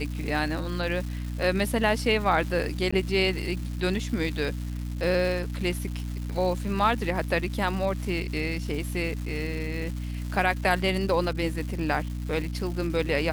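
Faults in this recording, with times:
crackle 480/s -35 dBFS
hum 60 Hz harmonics 5 -32 dBFS
2.91–2.92 gap 15 ms

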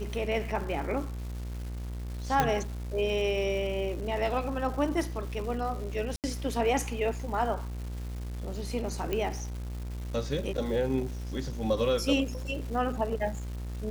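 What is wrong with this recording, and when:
buzz 60 Hz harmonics 39 -36 dBFS
crackle 560/s -40 dBFS
2.4 pop -10 dBFS
6.16–6.24 gap 78 ms
9.13 pop -17 dBFS

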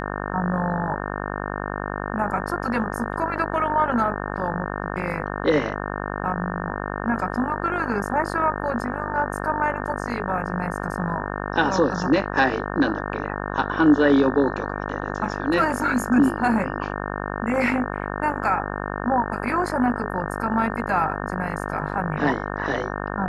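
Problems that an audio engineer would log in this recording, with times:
buzz 50 Hz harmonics 36 -29 dBFS

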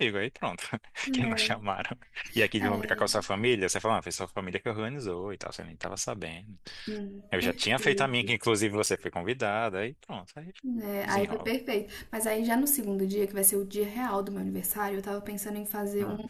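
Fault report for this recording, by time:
8.86–8.87 gap 5.6 ms

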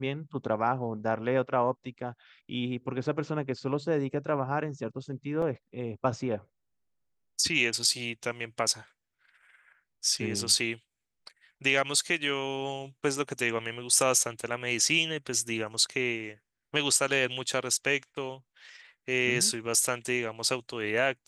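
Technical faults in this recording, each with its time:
5.42 gap 4.2 ms

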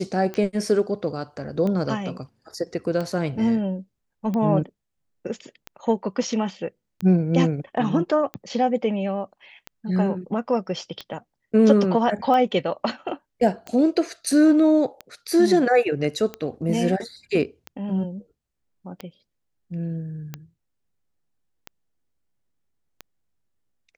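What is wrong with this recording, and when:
tick 45 rpm -17 dBFS

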